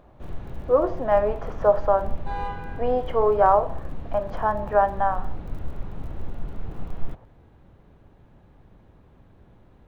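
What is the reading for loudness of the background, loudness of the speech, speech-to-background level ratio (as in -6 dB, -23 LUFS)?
-37.5 LUFS, -23.0 LUFS, 14.5 dB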